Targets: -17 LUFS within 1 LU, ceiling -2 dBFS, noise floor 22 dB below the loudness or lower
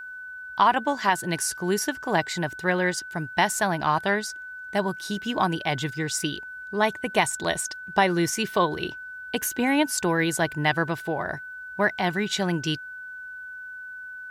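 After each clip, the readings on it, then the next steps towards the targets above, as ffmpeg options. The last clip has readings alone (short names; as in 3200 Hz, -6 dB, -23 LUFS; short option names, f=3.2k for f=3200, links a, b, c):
steady tone 1500 Hz; tone level -36 dBFS; loudness -25.5 LUFS; peak -7.0 dBFS; loudness target -17.0 LUFS
-> -af "bandreject=f=1.5k:w=30"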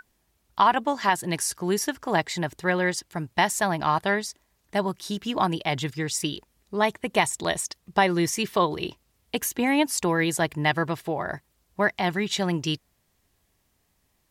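steady tone none; loudness -25.5 LUFS; peak -7.5 dBFS; loudness target -17.0 LUFS
-> -af "volume=8.5dB,alimiter=limit=-2dB:level=0:latency=1"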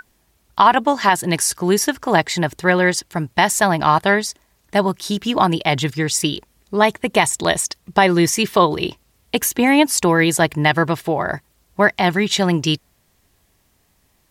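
loudness -17.5 LUFS; peak -2.0 dBFS; noise floor -62 dBFS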